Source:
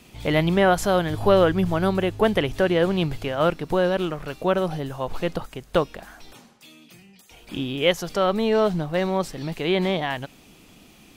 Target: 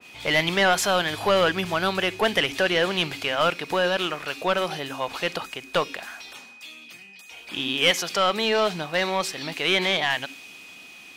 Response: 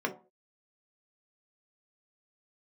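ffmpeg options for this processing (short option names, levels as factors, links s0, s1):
-filter_complex "[0:a]highpass=53,tiltshelf=f=1300:g=-4.5,aeval=exprs='val(0)+0.00316*sin(2*PI*2500*n/s)':c=same,asplit=2[s0][s1];[s1]highpass=f=720:p=1,volume=6.31,asoftclip=type=tanh:threshold=0.501[s2];[s0][s2]amix=inputs=2:normalize=0,lowpass=f=2900:p=1,volume=0.501,asplit=2[s3][s4];[s4]asplit=3[s5][s6][s7];[s5]bandpass=f=270:t=q:w=8,volume=1[s8];[s6]bandpass=f=2290:t=q:w=8,volume=0.501[s9];[s7]bandpass=f=3010:t=q:w=8,volume=0.355[s10];[s8][s9][s10]amix=inputs=3:normalize=0[s11];[1:a]atrim=start_sample=2205,adelay=53[s12];[s11][s12]afir=irnorm=-1:irlink=0,volume=0.266[s13];[s3][s13]amix=inputs=2:normalize=0,adynamicequalizer=threshold=0.0316:dfrequency=1900:dqfactor=0.7:tfrequency=1900:tqfactor=0.7:attack=5:release=100:ratio=0.375:range=2.5:mode=boostabove:tftype=highshelf,volume=0.596"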